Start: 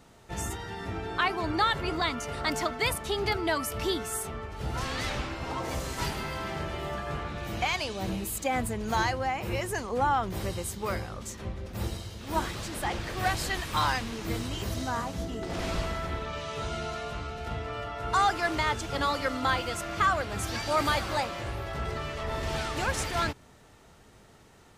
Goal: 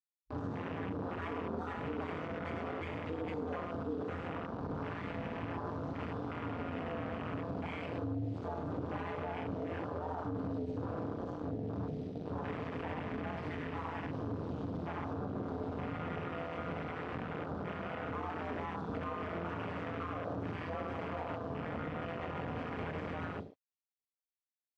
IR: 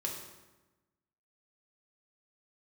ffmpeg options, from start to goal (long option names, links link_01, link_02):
-filter_complex "[0:a]equalizer=frequency=190:width_type=o:width=0.31:gain=11,acrusher=bits=3:dc=4:mix=0:aa=0.000001,lowpass=frequency=4700:width=0.5412,lowpass=frequency=4700:width=1.3066,asoftclip=type=tanh:threshold=-30dB[link_01];[1:a]atrim=start_sample=2205,afade=type=out:start_time=0.18:duration=0.01,atrim=end_sample=8379[link_02];[link_01][link_02]afir=irnorm=-1:irlink=0,aeval=exprs='val(0)*sin(2*PI*84*n/s)':channel_layout=same,aecho=1:1:100:0.422,alimiter=level_in=7.5dB:limit=-24dB:level=0:latency=1:release=60,volume=-7.5dB,highpass=91,acompressor=threshold=-44dB:ratio=2,afwtdn=0.00398,tiltshelf=frequency=1400:gain=3.5,volume=5dB"